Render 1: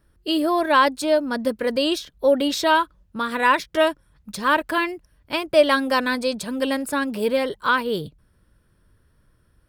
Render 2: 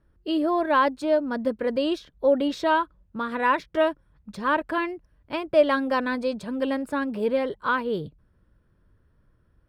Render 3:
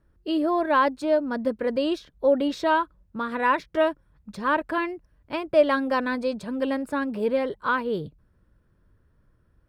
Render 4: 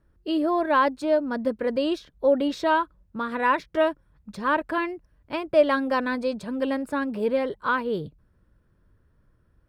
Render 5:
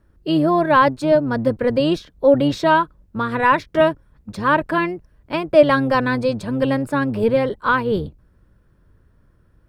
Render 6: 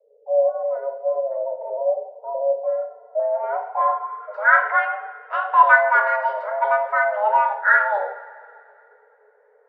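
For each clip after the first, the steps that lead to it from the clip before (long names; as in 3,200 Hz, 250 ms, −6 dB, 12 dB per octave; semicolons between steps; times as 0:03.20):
low-pass filter 1,400 Hz 6 dB per octave; level −2 dB
parametric band 3,200 Hz −2 dB 0.3 octaves
no processing that can be heard
sub-octave generator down 1 octave, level −5 dB; level +6.5 dB
coupled-rooms reverb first 0.56 s, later 2.6 s, from −18 dB, DRR 1.5 dB; low-pass filter sweep 160 Hz → 1,100 Hz, 0:02.87–0:04.55; frequency shifter +410 Hz; level −5 dB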